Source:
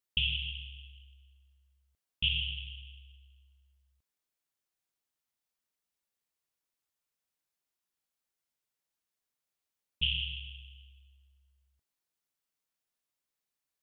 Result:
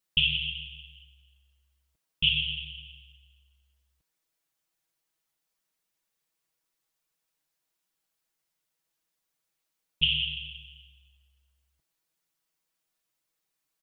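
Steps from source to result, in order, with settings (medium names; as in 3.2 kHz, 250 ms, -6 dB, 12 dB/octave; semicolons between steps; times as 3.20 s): comb 6.2 ms, depth 86%; trim +3.5 dB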